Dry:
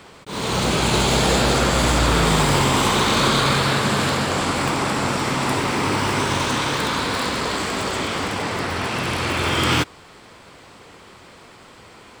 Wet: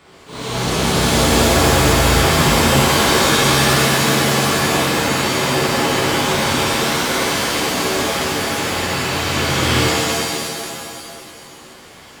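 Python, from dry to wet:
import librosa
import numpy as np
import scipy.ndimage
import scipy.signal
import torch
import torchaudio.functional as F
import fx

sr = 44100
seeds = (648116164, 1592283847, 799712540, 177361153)

y = fx.rev_shimmer(x, sr, seeds[0], rt60_s=2.2, semitones=7, shimmer_db=-2, drr_db=-6.5)
y = y * librosa.db_to_amplitude(-6.5)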